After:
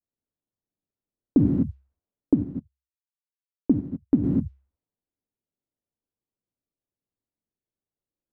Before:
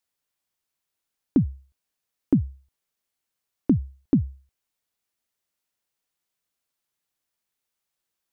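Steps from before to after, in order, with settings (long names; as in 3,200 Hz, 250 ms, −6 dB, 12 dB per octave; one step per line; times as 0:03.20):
reverb whose tail is shaped and stops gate 280 ms flat, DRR −0.5 dB
low-pass that shuts in the quiet parts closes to 420 Hz, open at −18 dBFS
0:02.34–0:04.24: expander for the loud parts 2.5 to 1, over −33 dBFS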